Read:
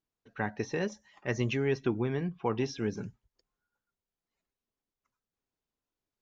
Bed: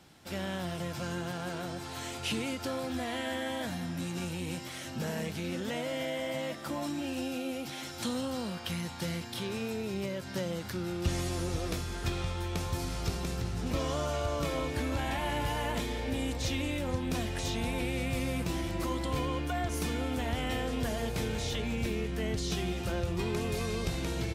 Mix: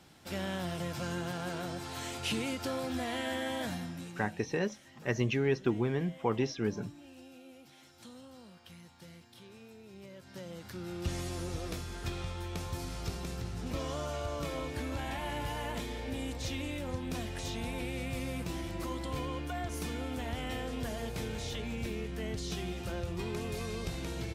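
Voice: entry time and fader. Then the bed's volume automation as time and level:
3.80 s, 0.0 dB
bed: 3.72 s -0.5 dB
4.46 s -17.5 dB
9.82 s -17.5 dB
10.98 s -4.5 dB

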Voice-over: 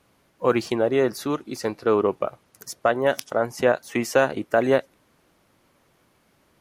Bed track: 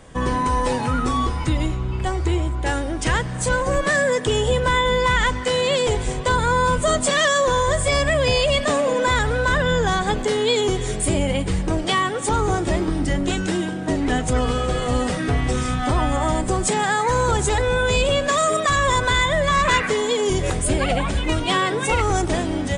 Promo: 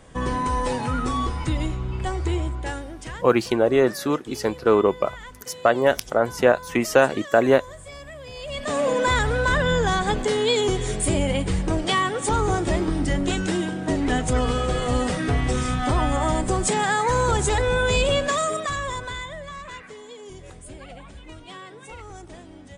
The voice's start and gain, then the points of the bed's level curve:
2.80 s, +2.5 dB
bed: 2.48 s -3.5 dB
3.44 s -21 dB
8.31 s -21 dB
8.83 s -1.5 dB
18.17 s -1.5 dB
19.68 s -20.5 dB

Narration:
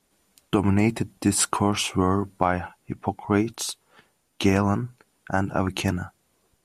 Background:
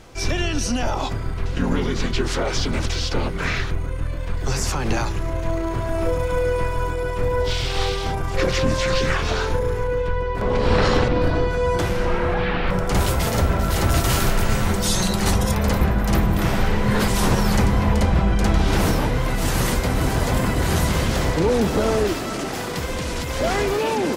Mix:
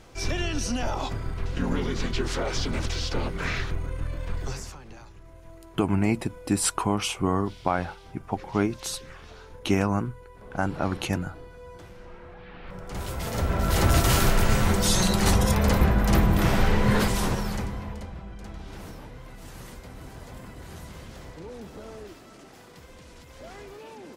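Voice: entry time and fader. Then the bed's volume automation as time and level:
5.25 s, -3.0 dB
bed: 4.39 s -5.5 dB
4.87 s -24 dB
12.42 s -24 dB
13.77 s -1.5 dB
16.91 s -1.5 dB
18.19 s -22 dB

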